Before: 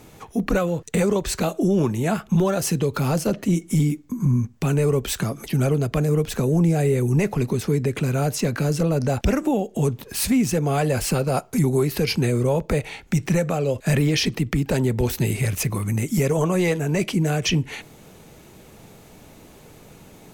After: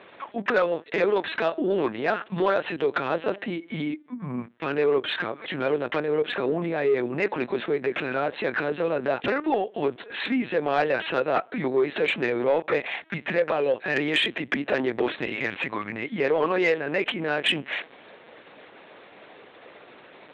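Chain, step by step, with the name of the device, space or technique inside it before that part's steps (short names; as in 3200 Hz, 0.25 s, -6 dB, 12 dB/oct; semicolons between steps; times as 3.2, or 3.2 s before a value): talking toy (LPC vocoder at 8 kHz pitch kept; HPF 420 Hz 12 dB/oct; bell 1700 Hz +6 dB 0.54 oct; soft clip -15.5 dBFS, distortion -21 dB); gain +3.5 dB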